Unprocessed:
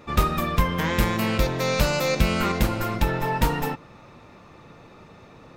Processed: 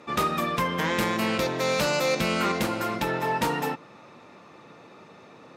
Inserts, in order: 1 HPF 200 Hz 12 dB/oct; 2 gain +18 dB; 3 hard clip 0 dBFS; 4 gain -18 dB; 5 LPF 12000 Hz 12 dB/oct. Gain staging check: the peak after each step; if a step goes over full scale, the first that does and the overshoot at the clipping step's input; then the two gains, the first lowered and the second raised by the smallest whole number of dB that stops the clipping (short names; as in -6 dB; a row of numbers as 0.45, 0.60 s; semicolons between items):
-10.5, +7.5, 0.0, -18.0, -17.0 dBFS; step 2, 7.5 dB; step 2 +10 dB, step 4 -10 dB